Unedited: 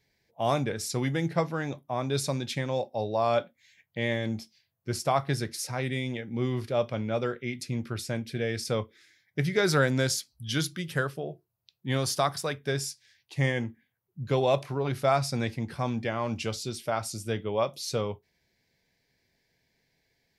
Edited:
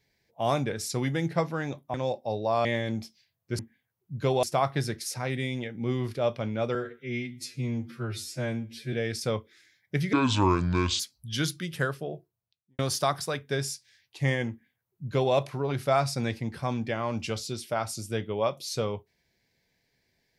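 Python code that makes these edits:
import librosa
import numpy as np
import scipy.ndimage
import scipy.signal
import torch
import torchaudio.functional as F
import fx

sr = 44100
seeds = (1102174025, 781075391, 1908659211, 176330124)

y = fx.studio_fade_out(x, sr, start_s=11.29, length_s=0.66)
y = fx.edit(y, sr, fx.cut(start_s=1.94, length_s=0.69),
    fx.cut(start_s=3.34, length_s=0.68),
    fx.stretch_span(start_s=7.28, length_s=1.09, factor=2.0),
    fx.speed_span(start_s=9.57, length_s=0.59, speed=0.68),
    fx.duplicate(start_s=13.66, length_s=0.84, to_s=4.96), tone=tone)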